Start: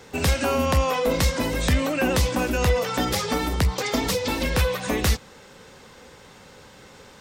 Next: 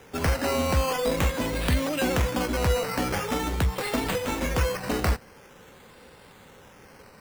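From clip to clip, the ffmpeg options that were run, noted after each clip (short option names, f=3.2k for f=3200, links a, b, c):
-af "acrusher=samples=10:mix=1:aa=0.000001:lfo=1:lforange=6:lforate=0.45,volume=-3dB"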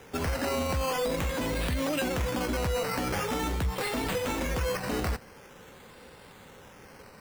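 -af "alimiter=limit=-22.5dB:level=0:latency=1:release=28"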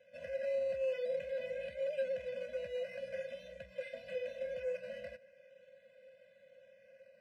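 -filter_complex "[0:a]asplit=3[a][b][c];[a]bandpass=f=530:t=q:w=8,volume=0dB[d];[b]bandpass=f=1.84k:t=q:w=8,volume=-6dB[e];[c]bandpass=f=2.48k:t=q:w=8,volume=-9dB[f];[d][e][f]amix=inputs=3:normalize=0,afftfilt=real='re*eq(mod(floor(b*sr/1024/240),2),0)':imag='im*eq(mod(floor(b*sr/1024/240),2),0)':win_size=1024:overlap=0.75"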